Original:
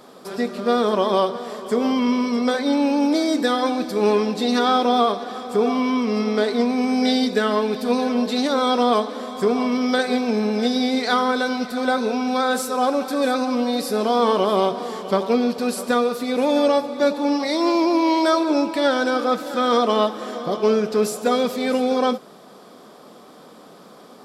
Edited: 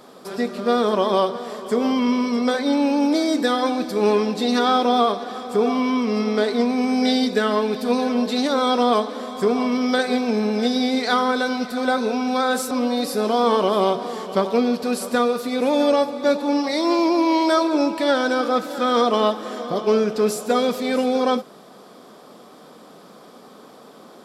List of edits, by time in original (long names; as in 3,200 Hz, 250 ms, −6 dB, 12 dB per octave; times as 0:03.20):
0:12.71–0:13.47: remove